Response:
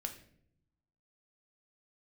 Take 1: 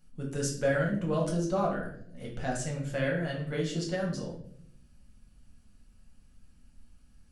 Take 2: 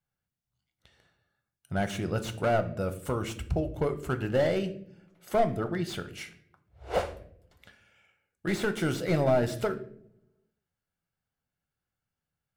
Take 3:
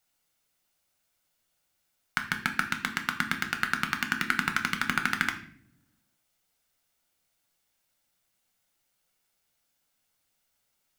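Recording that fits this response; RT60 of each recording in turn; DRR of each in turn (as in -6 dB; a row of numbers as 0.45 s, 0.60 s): 3; 0.65 s, no single decay rate, 0.65 s; -2.5 dB, 9.0 dB, 4.5 dB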